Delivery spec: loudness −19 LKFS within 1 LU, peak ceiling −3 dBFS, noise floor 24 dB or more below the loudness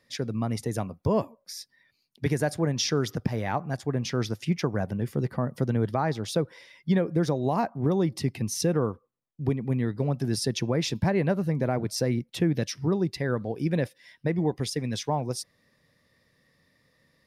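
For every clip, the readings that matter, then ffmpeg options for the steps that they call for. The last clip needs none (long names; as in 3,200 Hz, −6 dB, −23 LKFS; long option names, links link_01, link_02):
integrated loudness −28.0 LKFS; sample peak −13.0 dBFS; target loudness −19.0 LKFS
→ -af "volume=9dB"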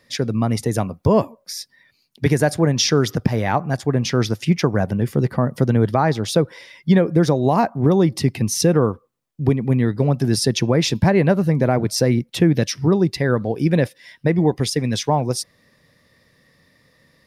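integrated loudness −19.0 LKFS; sample peak −4.0 dBFS; background noise floor −61 dBFS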